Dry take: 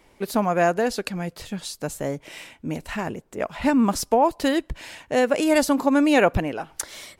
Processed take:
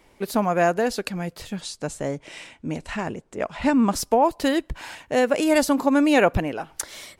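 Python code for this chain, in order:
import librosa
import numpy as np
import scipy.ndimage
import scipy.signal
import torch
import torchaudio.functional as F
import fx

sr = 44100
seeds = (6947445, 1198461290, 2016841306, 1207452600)

y = fx.lowpass(x, sr, hz=9500.0, slope=24, at=(1.61, 3.94))
y = fx.spec_box(y, sr, start_s=4.75, length_s=0.2, low_hz=710.0, high_hz=1700.0, gain_db=8)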